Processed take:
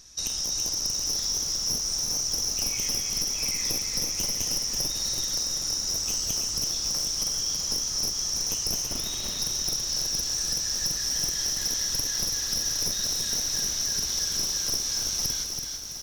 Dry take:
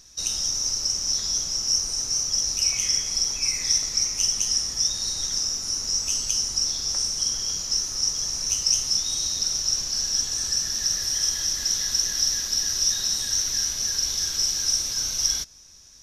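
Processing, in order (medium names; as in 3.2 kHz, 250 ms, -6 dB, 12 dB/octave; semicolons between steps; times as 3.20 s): one-sided wavefolder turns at -20.5 dBFS; 8.86–9.39 s: resonant high shelf 4 kHz -6.5 dB, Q 1.5; compression 3:1, threshold -27 dBFS, peak gain reduction 7.5 dB; feedback delay 331 ms, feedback 36%, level -5.5 dB; bit-crushed delay 765 ms, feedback 35%, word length 7-bit, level -9 dB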